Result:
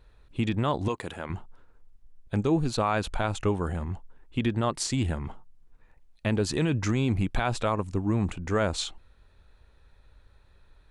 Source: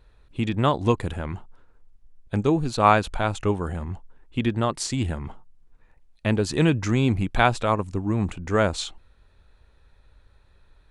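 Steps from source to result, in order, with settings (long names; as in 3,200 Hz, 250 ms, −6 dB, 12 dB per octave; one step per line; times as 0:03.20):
brickwall limiter −14.5 dBFS, peak gain reduction 10.5 dB
0:00.88–0:01.30: high-pass filter 420 Hz 6 dB per octave
level −1 dB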